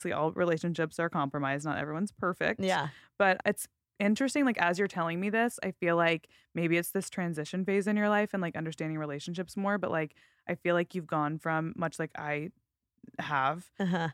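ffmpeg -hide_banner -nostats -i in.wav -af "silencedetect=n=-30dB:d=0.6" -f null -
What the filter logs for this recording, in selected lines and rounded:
silence_start: 12.47
silence_end: 13.20 | silence_duration: 0.72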